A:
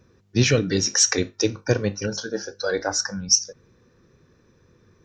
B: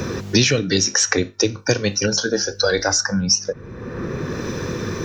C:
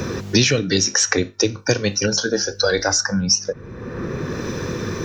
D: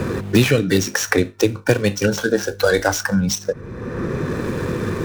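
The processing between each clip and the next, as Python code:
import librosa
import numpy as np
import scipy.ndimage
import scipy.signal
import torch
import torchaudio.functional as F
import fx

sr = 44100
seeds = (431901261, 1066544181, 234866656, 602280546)

y1 = fx.band_squash(x, sr, depth_pct=100)
y1 = y1 * 10.0 ** (4.0 / 20.0)
y2 = y1
y3 = scipy.ndimage.median_filter(y2, 9, mode='constant')
y3 = y3 * 10.0 ** (3.0 / 20.0)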